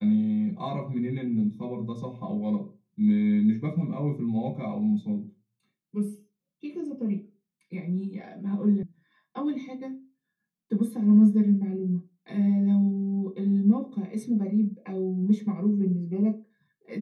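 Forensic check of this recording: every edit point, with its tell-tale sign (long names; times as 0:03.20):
0:08.83: cut off before it has died away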